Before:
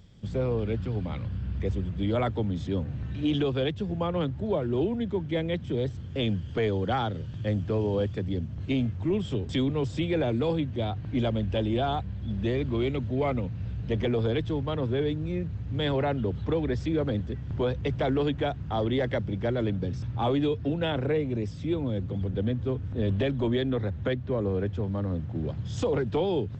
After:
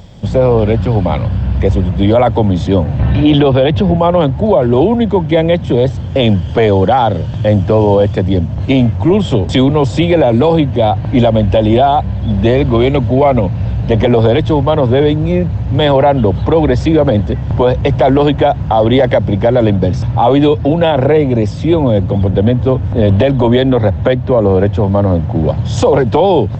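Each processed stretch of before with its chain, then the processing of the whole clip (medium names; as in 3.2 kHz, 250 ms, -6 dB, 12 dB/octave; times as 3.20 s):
2.99–3.97 s: low-pass 4 kHz + level flattener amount 50%
whole clip: high-order bell 730 Hz +8.5 dB 1.1 oct; loudness maximiser +18.5 dB; trim -1 dB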